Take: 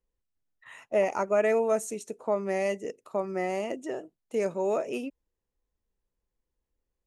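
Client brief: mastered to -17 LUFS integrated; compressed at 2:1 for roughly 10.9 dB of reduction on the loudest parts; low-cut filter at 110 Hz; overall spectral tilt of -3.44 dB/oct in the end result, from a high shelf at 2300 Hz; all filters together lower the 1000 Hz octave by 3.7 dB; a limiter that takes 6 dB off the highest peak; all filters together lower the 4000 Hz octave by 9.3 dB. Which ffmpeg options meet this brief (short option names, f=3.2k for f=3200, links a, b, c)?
-af "highpass=110,equalizer=f=1k:t=o:g=-3.5,highshelf=f=2.3k:g=-9,equalizer=f=4k:t=o:g=-5.5,acompressor=threshold=-43dB:ratio=2,volume=26dB,alimiter=limit=-6.5dB:level=0:latency=1"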